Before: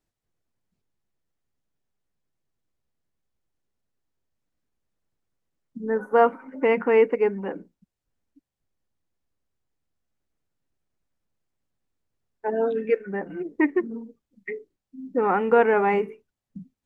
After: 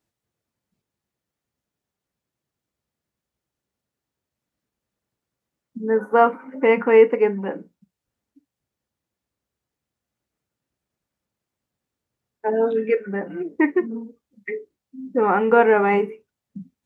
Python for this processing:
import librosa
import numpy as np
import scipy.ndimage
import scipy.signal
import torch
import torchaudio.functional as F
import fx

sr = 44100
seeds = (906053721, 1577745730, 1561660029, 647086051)

y = scipy.signal.sosfilt(scipy.signal.butter(2, 73.0, 'highpass', fs=sr, output='sos'), x)
y = fx.rev_gated(y, sr, seeds[0], gate_ms=80, shape='falling', drr_db=10.0)
y = y * 10.0 ** (3.0 / 20.0)